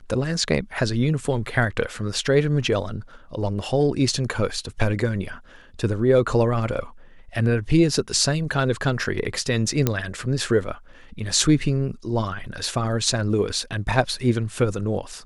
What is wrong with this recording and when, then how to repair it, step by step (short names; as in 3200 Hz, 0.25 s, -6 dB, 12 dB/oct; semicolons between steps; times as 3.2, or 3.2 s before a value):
9.87 pop -5 dBFS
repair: de-click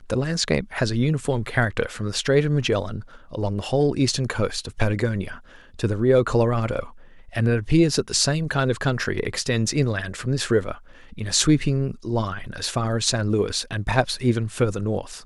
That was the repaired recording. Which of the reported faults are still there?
none